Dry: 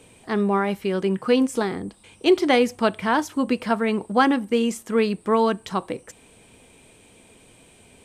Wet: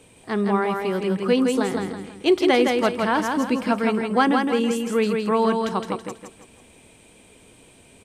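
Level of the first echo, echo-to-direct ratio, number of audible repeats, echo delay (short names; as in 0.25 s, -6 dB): -4.0 dB, -3.5 dB, 4, 0.164 s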